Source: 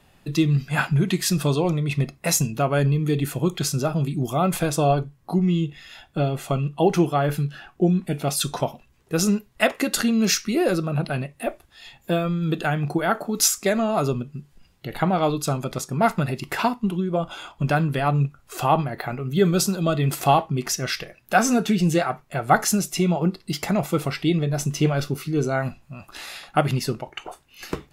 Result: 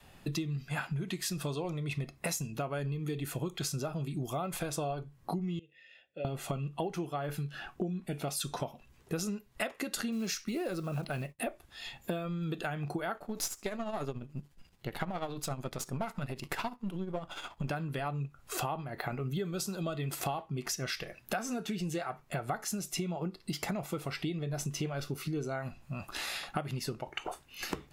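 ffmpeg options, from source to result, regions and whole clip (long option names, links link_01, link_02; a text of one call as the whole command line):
ffmpeg -i in.wav -filter_complex "[0:a]asettb=1/sr,asplit=3[link_01][link_02][link_03];[link_01]atrim=end=5.594[link_04];[link_02]atrim=start=5.59:end=6.25,asetpts=PTS-STARTPTS,afade=type=in:duration=0.004:curve=qsin,afade=type=out:start_time=0.656:duration=0.004:curve=qsin,asplit=3[link_05][link_06][link_07];[link_05]bandpass=frequency=530:width_type=q:width=8,volume=0dB[link_08];[link_06]bandpass=frequency=1840:width_type=q:width=8,volume=-6dB[link_09];[link_07]bandpass=frequency=2480:width_type=q:width=8,volume=-9dB[link_10];[link_08][link_09][link_10]amix=inputs=3:normalize=0,equalizer=frequency=700:width=0.52:gain=-6.5,bandreject=frequency=1700:width=19[link_11];[link_03]atrim=start=6.246[link_12];[link_04][link_11]acrossfade=duration=0.004:curve1=hsin:curve2=qsin[link_13];[link_13][link_12]acrossfade=duration=0.004:curve1=qsin:curve2=hsin,asettb=1/sr,asplit=3[link_14][link_15][link_16];[link_14]atrim=end=10.124[link_17];[link_15]atrim=start=10.12:end=11.39,asetpts=PTS-STARTPTS,afade=type=in:duration=0.004:curve=qsin,afade=type=out:start_time=1.266:duration=0.004:curve=qsin,agate=range=-33dB:threshold=-39dB:ratio=3:release=100:detection=peak,lowshelf=frequency=120:gain=3,acrusher=bits=7:mode=log:mix=0:aa=0.000001[link_18];[link_16]atrim=start=11.386[link_19];[link_17][link_18]acrossfade=duration=0.004:curve1=hsin:curve2=qsin[link_20];[link_20][link_19]acrossfade=duration=0.004:curve1=qsin:curve2=hsin,asettb=1/sr,asplit=3[link_21][link_22][link_23];[link_21]atrim=end=13.174[link_24];[link_22]atrim=start=13.17:end=17.68,asetpts=PTS-STARTPTS,afade=type=in:duration=0.004:curve=qsin,afade=type=out:start_time=4.506:duration=0.004:curve=qsin,aeval=exprs='if(lt(val(0),0),0.447*val(0),val(0))':channel_layout=same,tremolo=f=14:d=0.57[link_25];[link_23]atrim=start=17.676[link_26];[link_24][link_25]acrossfade=duration=0.004:curve1=hsin:curve2=qsin[link_27];[link_27][link_26]acrossfade=duration=0.004:curve1=qsin:curve2=hsin,adynamicequalizer=threshold=0.0282:dfrequency=200:dqfactor=0.98:tfrequency=200:tqfactor=0.98:attack=5:release=100:ratio=0.375:range=2.5:mode=cutabove:tftype=bell,acompressor=threshold=-32dB:ratio=12" out.wav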